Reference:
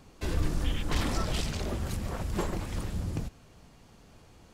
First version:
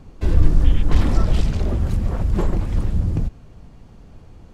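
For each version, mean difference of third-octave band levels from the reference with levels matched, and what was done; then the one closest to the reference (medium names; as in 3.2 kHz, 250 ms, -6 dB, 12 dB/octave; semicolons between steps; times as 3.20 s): 6.5 dB: tilt EQ -2.5 dB/octave; trim +4 dB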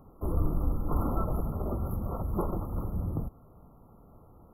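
11.0 dB: brick-wall FIR band-stop 1.4–11 kHz; trim +1 dB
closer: first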